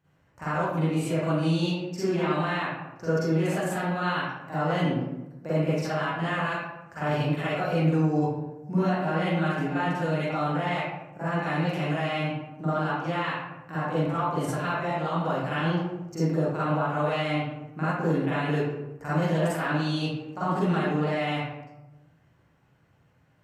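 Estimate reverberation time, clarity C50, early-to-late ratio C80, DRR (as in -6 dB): 1.0 s, -5.0 dB, 0.0 dB, -12.0 dB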